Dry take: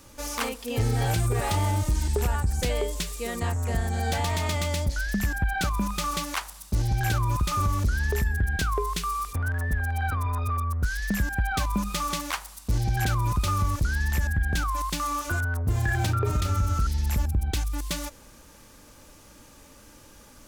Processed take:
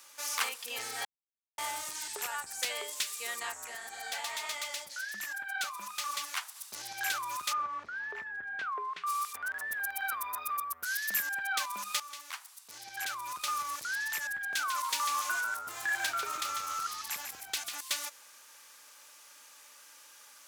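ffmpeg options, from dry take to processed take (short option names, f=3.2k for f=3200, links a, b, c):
-filter_complex "[0:a]asplit=3[a][b][c];[a]afade=t=out:st=3.66:d=0.02[d];[b]flanger=delay=0.9:depth=8.3:regen=44:speed=1.5:shape=triangular,afade=t=in:st=3.66:d=0.02,afade=t=out:st=6.55:d=0.02[e];[c]afade=t=in:st=6.55:d=0.02[f];[d][e][f]amix=inputs=3:normalize=0,asplit=3[g][h][i];[g]afade=t=out:st=7.52:d=0.02[j];[h]lowpass=1.6k,afade=t=in:st=7.52:d=0.02,afade=t=out:st=9.06:d=0.02[k];[i]afade=t=in:st=9.06:d=0.02[l];[j][k][l]amix=inputs=3:normalize=0,asettb=1/sr,asplit=3[m][n][o];[m]atrim=end=9.724[p];[n]atrim=start=9.72:end=11.27,asetpts=PTS-STARTPTS,afade=t=in:d=0.004:c=qsin,afade=t=out:st=1.546:d=0.004:c=qsin,equalizer=f=14k:t=o:w=0.53:g=14[q];[o]atrim=start=11.266[r];[p][q]acrossfade=d=0.004:c1=hsin:c2=qsin[s];[s][r]acrossfade=d=0.004:c1=qsin:c2=hsin,asettb=1/sr,asplit=3[t][u][v];[t]atrim=end=14.414[w];[u]atrim=start=14.41:end=17.79,asetpts=PTS-STARTPTS,afade=t=in:d=0.004:c=qsin,afade=t=out:st=3.376:d=0.004:c=qsin,asplit=5[x][y][z][aa][ab];[y]adelay=146,afreqshift=-96,volume=-6.5dB[ac];[z]adelay=292,afreqshift=-192,volume=-16.7dB[ad];[aa]adelay=438,afreqshift=-288,volume=-26.8dB[ae];[ab]adelay=584,afreqshift=-384,volume=-37dB[af];[x][ac][ad][ae][af]amix=inputs=5:normalize=0,atrim=end_sample=149058[ag];[v]atrim=start=17.786[ah];[w][ag]acrossfade=d=0.004:c1=hsin:c2=qsin[ai];[ai][ah]acrossfade=d=0.004:c1=qsin:c2=hsin,asplit=4[aj][ak][al][am];[aj]atrim=end=1.05,asetpts=PTS-STARTPTS,afade=t=out:st=1.046:d=0.004:c=hsin[an];[ak]atrim=start=1.05:end=1.58,asetpts=PTS-STARTPTS,volume=0[ao];[al]atrim=start=1.58:end=12,asetpts=PTS-STARTPTS,afade=t=in:d=0.004:c=hsin,afade=t=out:st=10.416:d=0.004:c=hsin:silence=0.16788[ap];[am]atrim=start=12,asetpts=PTS-STARTPTS,afade=t=in:d=1.82:silence=0.16788[aq];[an][ao][ap][aq]concat=n=4:v=0:a=1,highpass=1.2k"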